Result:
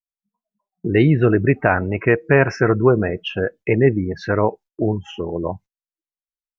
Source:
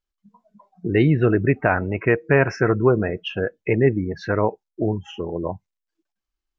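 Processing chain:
noise gate −42 dBFS, range −28 dB
level +2.5 dB

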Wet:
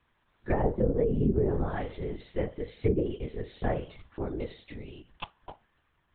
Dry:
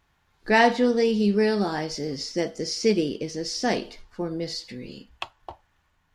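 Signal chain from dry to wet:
treble cut that deepens with the level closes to 530 Hz, closed at −16.5 dBFS
linear-prediction vocoder at 8 kHz whisper
level −4 dB

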